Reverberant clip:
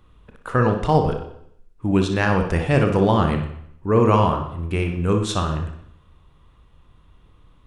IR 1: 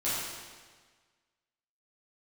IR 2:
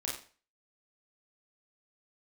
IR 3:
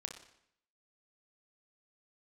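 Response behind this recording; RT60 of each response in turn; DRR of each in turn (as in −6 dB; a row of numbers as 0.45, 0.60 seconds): 3; 1.5, 0.40, 0.70 seconds; −11.0, −4.0, 4.0 decibels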